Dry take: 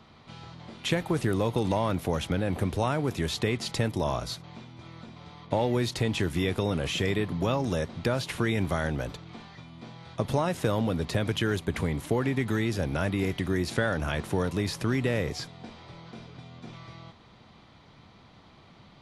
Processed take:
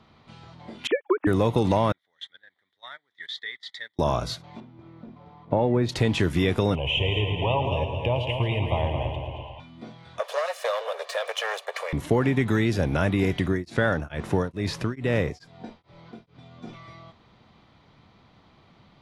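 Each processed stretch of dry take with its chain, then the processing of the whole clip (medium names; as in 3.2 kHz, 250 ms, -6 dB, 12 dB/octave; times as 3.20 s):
0.87–1.27 s: formants replaced by sine waves + upward expansion 2.5:1, over -42 dBFS
1.92–3.99 s: two resonant band-passes 2.6 kHz, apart 0.87 oct + gate -46 dBFS, range -20 dB
4.60–5.89 s: low-pass 1 kHz 6 dB/octave + peaking EQ 66 Hz -5 dB 0.9 oct
6.75–9.60 s: FFT filter 120 Hz 0 dB, 200 Hz -15 dB, 990 Hz +4 dB, 1.4 kHz -29 dB, 2.9 kHz +9 dB, 4.1 kHz -20 dB + multi-head delay 111 ms, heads first and second, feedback 59%, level -9 dB
10.19–11.93 s: comb filter that takes the minimum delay 1.7 ms + steep high-pass 500 Hz 48 dB/octave
13.44–16.51 s: treble shelf 9.7 kHz -6.5 dB + tremolo of two beating tones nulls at 2.3 Hz
whole clip: spectral noise reduction 7 dB; treble shelf 7.5 kHz -9.5 dB; trim +5 dB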